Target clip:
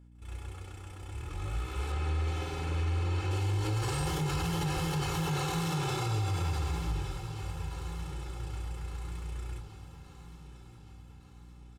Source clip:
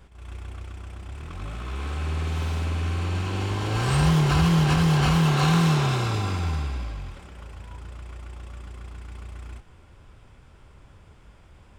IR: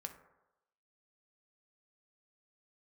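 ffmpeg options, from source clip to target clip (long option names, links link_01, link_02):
-filter_complex "[0:a]agate=range=-15dB:threshold=-40dB:ratio=16:detection=peak,aecho=1:1:2.3:0.76[link_01];[1:a]atrim=start_sample=2205,asetrate=27342,aresample=44100[link_02];[link_01][link_02]afir=irnorm=-1:irlink=0,aeval=exprs='val(0)+0.00355*(sin(2*PI*60*n/s)+sin(2*PI*2*60*n/s)/2+sin(2*PI*3*60*n/s)/3+sin(2*PI*4*60*n/s)/4+sin(2*PI*5*60*n/s)/5)':channel_layout=same,asetnsamples=nb_out_samples=441:pad=0,asendcmd='1.92 highshelf g -2;3.31 highshelf g 11',highshelf=frequency=7300:gain=10.5,aecho=1:1:1167|2334|3501|4668|5835:0.15|0.0823|0.0453|0.0249|0.0137,alimiter=limit=-19.5dB:level=0:latency=1:release=24,volume=-4.5dB"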